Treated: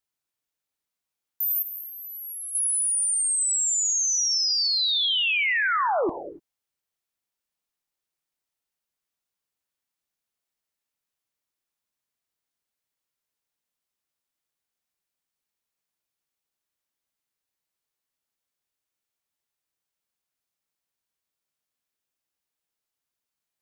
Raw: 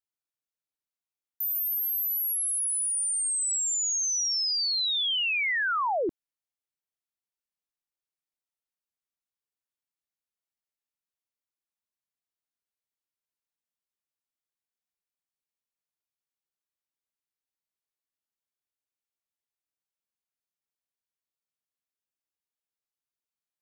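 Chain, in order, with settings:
in parallel at +0.5 dB: brickwall limiter −31.5 dBFS, peak gain reduction 8 dB
0:01.62–0:02.55: on the sum: low-pass with resonance 6,300 Hz, resonance Q 2.7
reverb whose tail is shaped and stops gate 310 ms flat, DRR 10 dB

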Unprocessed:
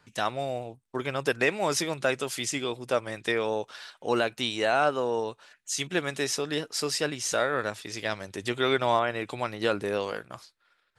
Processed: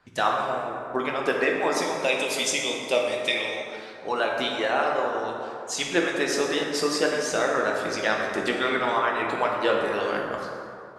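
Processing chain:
high-shelf EQ 4,500 Hz −9.5 dB
harmonic and percussive parts rebalanced harmonic −17 dB
0:02.04–0:03.62: drawn EQ curve 880 Hz 0 dB, 1,500 Hz −10 dB, 2,300 Hz +10 dB
speech leveller within 4 dB 0.5 s
dense smooth reverb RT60 2.6 s, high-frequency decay 0.45×, DRR −1 dB
level +4 dB

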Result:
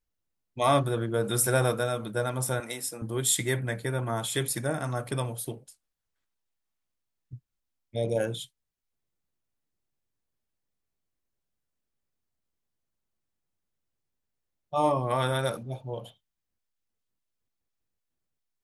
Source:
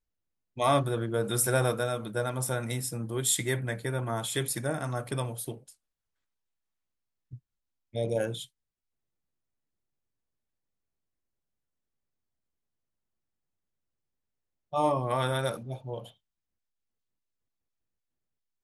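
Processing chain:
0:02.60–0:03.02: high-pass filter 370 Hz 12 dB per octave
level +1.5 dB

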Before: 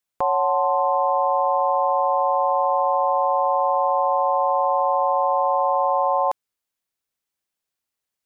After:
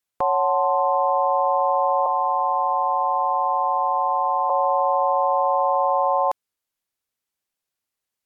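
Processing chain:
0:02.06–0:04.50: high-pass filter 650 Hz 24 dB per octave
Ogg Vorbis 192 kbit/s 48,000 Hz

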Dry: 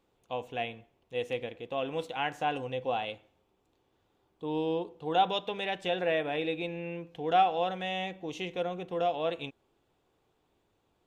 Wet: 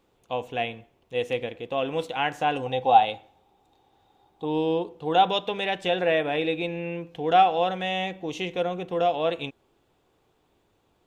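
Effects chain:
0:02.66–0:04.45: hollow resonant body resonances 800/3,700 Hz, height 16 dB, ringing for 45 ms
level +6 dB

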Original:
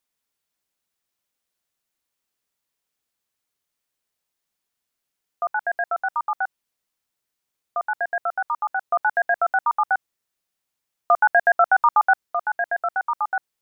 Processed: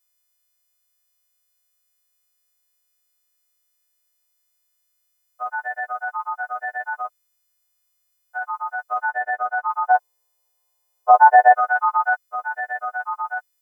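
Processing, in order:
every partial snapped to a pitch grid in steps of 3 semitones
0:06.43–0:08.39: reverse
0:09.09–0:09.68: spectral tilt −2 dB per octave
0:09.89–0:11.54: gain on a spectral selection 370–1,100 Hz +12 dB
level −3 dB

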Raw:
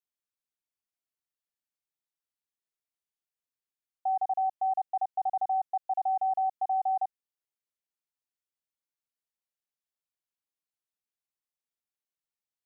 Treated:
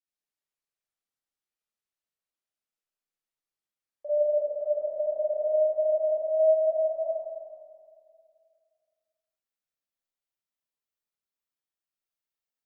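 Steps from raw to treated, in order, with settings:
pitch glide at a constant tempo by −6.5 semitones ending unshifted
dynamic equaliser 530 Hz, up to +4 dB, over −42 dBFS, Q 4.3
brickwall limiter −32.5 dBFS, peak gain reduction 11 dB
noise reduction from a noise print of the clip's start 9 dB
convolution reverb RT60 2.2 s, pre-delay 5 ms, DRR −9.5 dB

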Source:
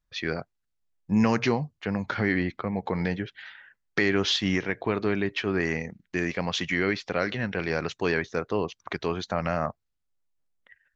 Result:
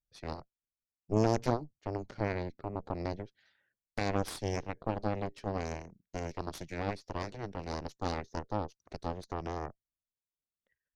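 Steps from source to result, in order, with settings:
flat-topped bell 1,700 Hz −14 dB 2.4 octaves
harmonic generator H 2 −10 dB, 3 −8 dB, 4 −11 dB, 7 −43 dB, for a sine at −12 dBFS

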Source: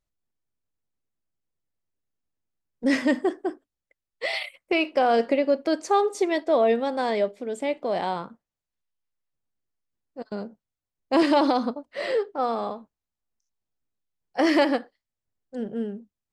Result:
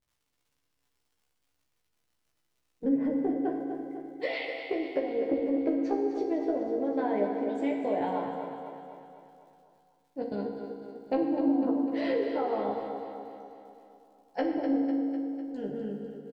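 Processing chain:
low-pass filter 5,900 Hz 12 dB per octave
notch filter 1,200 Hz, Q 5.5
treble cut that deepens with the level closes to 370 Hz, closed at −17.5 dBFS
low-shelf EQ 160 Hz −4.5 dB
harmonic and percussive parts rebalanced harmonic −9 dB
low-shelf EQ 460 Hz +11.5 dB
downward compressor, threshold −23 dBFS, peak gain reduction 8 dB
surface crackle 130 per second −58 dBFS
double-tracking delay 15 ms −3.5 dB
repeating echo 250 ms, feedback 58%, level −9 dB
feedback delay network reverb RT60 2 s, low-frequency decay 1.05×, high-frequency decay 0.85×, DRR 2 dB
level −5 dB

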